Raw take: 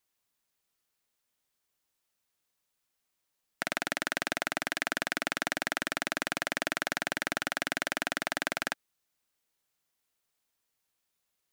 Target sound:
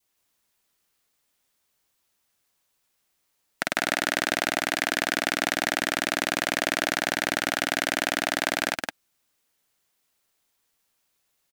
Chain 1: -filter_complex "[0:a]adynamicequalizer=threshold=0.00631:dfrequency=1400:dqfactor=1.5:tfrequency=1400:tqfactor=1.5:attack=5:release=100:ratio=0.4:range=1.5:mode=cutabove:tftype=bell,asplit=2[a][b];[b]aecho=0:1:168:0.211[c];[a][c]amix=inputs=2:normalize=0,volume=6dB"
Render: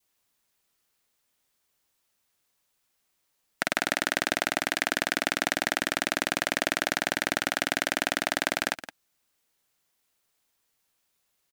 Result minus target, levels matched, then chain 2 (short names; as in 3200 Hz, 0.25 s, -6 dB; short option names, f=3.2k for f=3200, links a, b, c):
echo-to-direct -10.5 dB
-filter_complex "[0:a]adynamicequalizer=threshold=0.00631:dfrequency=1400:dqfactor=1.5:tfrequency=1400:tqfactor=1.5:attack=5:release=100:ratio=0.4:range=1.5:mode=cutabove:tftype=bell,asplit=2[a][b];[b]aecho=0:1:168:0.708[c];[a][c]amix=inputs=2:normalize=0,volume=6dB"